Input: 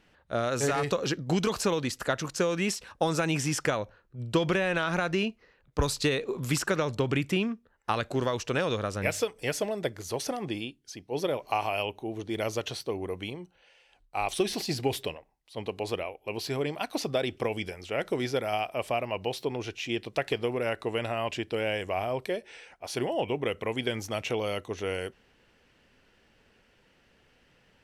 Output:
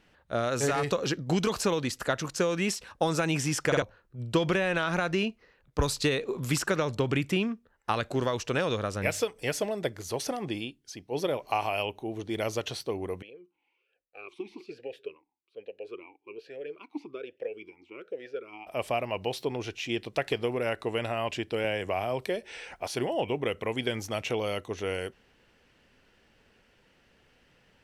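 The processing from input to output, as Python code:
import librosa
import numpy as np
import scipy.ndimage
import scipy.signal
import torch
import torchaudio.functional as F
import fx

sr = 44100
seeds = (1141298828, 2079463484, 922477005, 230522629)

y = fx.vowel_sweep(x, sr, vowels='e-u', hz=1.2, at=(13.22, 18.67))
y = fx.band_squash(y, sr, depth_pct=70, at=(21.64, 22.88))
y = fx.edit(y, sr, fx.stutter_over(start_s=3.67, slice_s=0.05, count=3), tone=tone)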